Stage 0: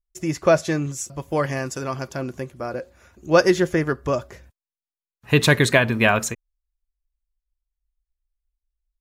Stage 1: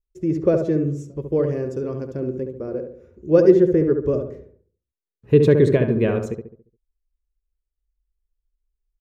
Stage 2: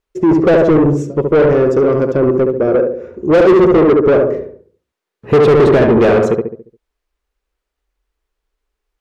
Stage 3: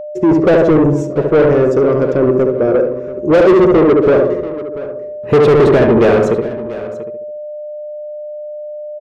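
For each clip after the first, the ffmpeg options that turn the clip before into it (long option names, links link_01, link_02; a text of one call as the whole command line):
ffmpeg -i in.wav -filter_complex "[0:a]firequalizer=gain_entry='entry(280,0);entry(430,7);entry(710,-15);entry(9800,-24)':delay=0.05:min_phase=1,asplit=2[link_01][link_02];[link_02]adelay=70,lowpass=frequency=1400:poles=1,volume=-5dB,asplit=2[link_03][link_04];[link_04]adelay=70,lowpass=frequency=1400:poles=1,volume=0.46,asplit=2[link_05][link_06];[link_06]adelay=70,lowpass=frequency=1400:poles=1,volume=0.46,asplit=2[link_07][link_08];[link_08]adelay=70,lowpass=frequency=1400:poles=1,volume=0.46,asplit=2[link_09][link_10];[link_10]adelay=70,lowpass=frequency=1400:poles=1,volume=0.46,asplit=2[link_11][link_12];[link_12]adelay=70,lowpass=frequency=1400:poles=1,volume=0.46[link_13];[link_03][link_05][link_07][link_09][link_11][link_13]amix=inputs=6:normalize=0[link_14];[link_01][link_14]amix=inputs=2:normalize=0,volume=1dB" out.wav
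ffmpeg -i in.wav -filter_complex "[0:a]asplit=2[link_01][link_02];[link_02]highpass=frequency=720:poles=1,volume=32dB,asoftclip=type=tanh:threshold=-1dB[link_03];[link_01][link_03]amix=inputs=2:normalize=0,lowpass=frequency=1100:poles=1,volume=-6dB" out.wav
ffmpeg -i in.wav -af "aeval=exprs='val(0)+0.0631*sin(2*PI*600*n/s)':channel_layout=same,aecho=1:1:688:0.168" out.wav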